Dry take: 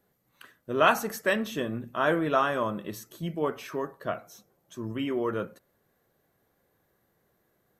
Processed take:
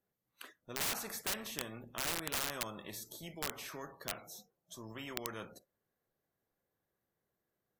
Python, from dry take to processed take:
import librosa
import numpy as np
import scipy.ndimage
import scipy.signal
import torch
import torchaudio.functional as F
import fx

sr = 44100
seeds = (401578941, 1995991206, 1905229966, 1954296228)

y = fx.noise_reduce_blind(x, sr, reduce_db=20)
y = (np.mod(10.0 ** (19.0 / 20.0) * y + 1.0, 2.0) - 1.0) / 10.0 ** (19.0 / 20.0)
y = fx.spectral_comp(y, sr, ratio=2.0)
y = F.gain(torch.from_numpy(y), 8.5).numpy()